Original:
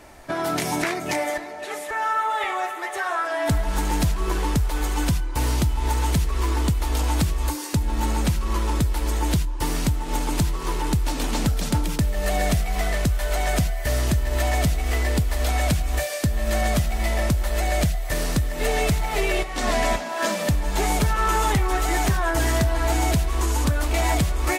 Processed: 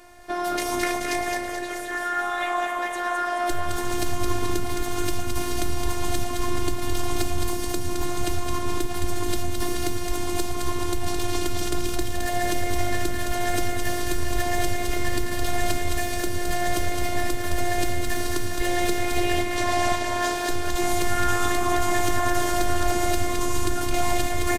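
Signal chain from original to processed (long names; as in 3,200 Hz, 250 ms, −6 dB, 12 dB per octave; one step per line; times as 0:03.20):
echo with shifted repeats 215 ms, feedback 59%, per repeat −99 Hz, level −4 dB
phases set to zero 353 Hz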